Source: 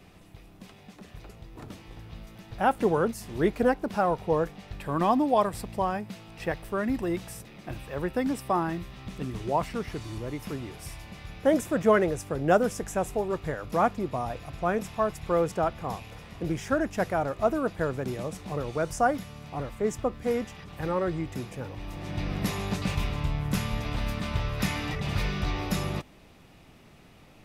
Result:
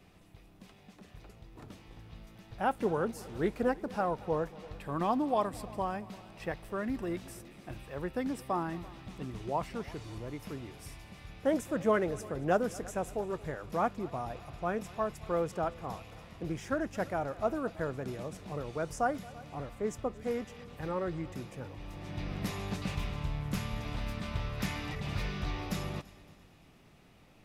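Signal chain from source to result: multi-head echo 0.113 s, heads second and third, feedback 48%, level -21.5 dB; Doppler distortion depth 0.12 ms; gain -6.5 dB

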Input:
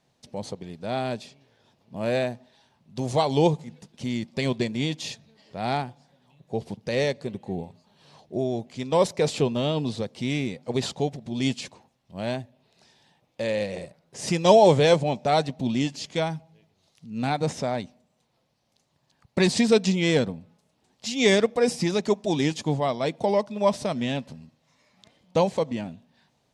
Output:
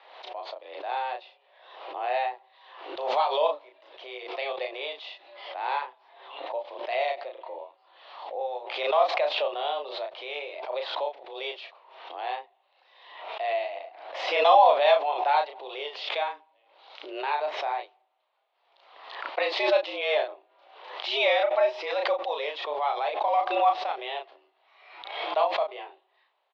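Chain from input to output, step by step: mistuned SSB +140 Hz 390–3500 Hz; doubler 34 ms -4 dB; backwards sustainer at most 59 dB/s; gain -3 dB

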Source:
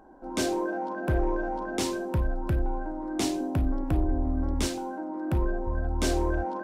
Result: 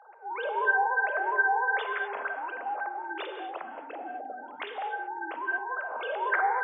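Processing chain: sine-wave speech; HPF 600 Hz 24 dB/oct; non-linear reverb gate 0.27 s flat, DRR 5.5 dB

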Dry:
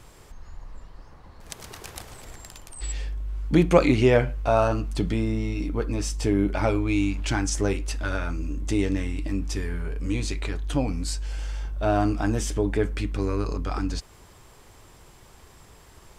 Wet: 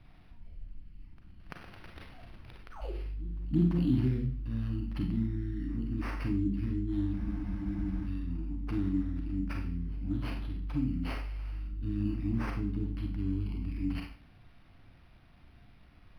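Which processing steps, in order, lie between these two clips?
Chebyshev band-stop 300–4400 Hz, order 4; on a send: reverse echo 0.339 s -22.5 dB; on the sum: Schroeder reverb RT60 0.46 s, combs from 31 ms, DRR 1.5 dB; spectral freeze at 7.19, 0.87 s; decimation joined by straight lines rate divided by 6×; gain -6.5 dB

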